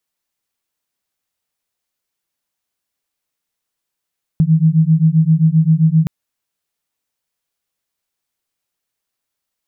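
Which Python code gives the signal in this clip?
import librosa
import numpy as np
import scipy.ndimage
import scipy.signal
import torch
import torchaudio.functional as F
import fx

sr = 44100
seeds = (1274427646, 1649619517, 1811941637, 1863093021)

y = fx.two_tone_beats(sr, length_s=1.67, hz=156.0, beat_hz=7.6, level_db=-12.0)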